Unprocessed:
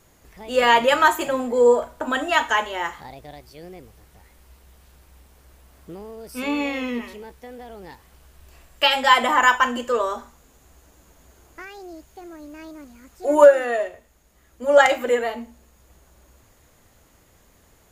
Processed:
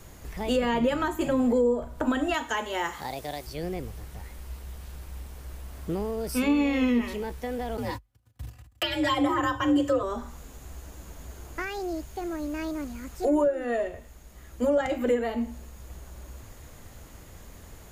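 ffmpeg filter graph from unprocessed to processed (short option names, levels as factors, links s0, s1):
-filter_complex "[0:a]asettb=1/sr,asplit=3[s0][s1][s2];[s0]atrim=end=2.344[s3];[s1]atrim=start=2.34:end=3.47,asetpts=PTS-STARTPTS,afade=t=in:d=0.004:c=qsin,afade=t=out:st=1.126:d=0.004:c=qsin,highpass=51,bass=f=250:g=-9,treble=f=4000:g=6[s4];[s2]atrim=start=3.466[s5];[s3][s4]acrossfade=d=0.004:c1=hsin:c2=qsin[s6];[s6][s5]acrossfade=d=0.004:c1=qsin:c2=hsin,asettb=1/sr,asplit=3[s7][s8][s9];[s7]atrim=end=7.774[s10];[s8]atrim=start=7.77:end=10.03,asetpts=PTS-STARTPTS,afade=t=in:d=0.004:c=qsin,afade=t=out:st=2.256:d=0.004:c=qsin,agate=range=0.0126:threshold=0.00447:ratio=16:release=100:detection=peak,aecho=1:1:4.2:0.9,atrim=end_sample=99666,afreqshift=49[s11];[s9]atrim=start=10.026[s12];[s10][s11]acrossfade=d=0.004:c1=hsin:c2=qsin[s13];[s13][s12]acrossfade=d=0.004:c1=qsin:c2=hsin,lowshelf=f=160:g=7.5,acrossover=split=340[s14][s15];[s15]acompressor=threshold=0.02:ratio=4[s16];[s14][s16]amix=inputs=2:normalize=0,alimiter=limit=0.0841:level=0:latency=1:release=420,volume=2"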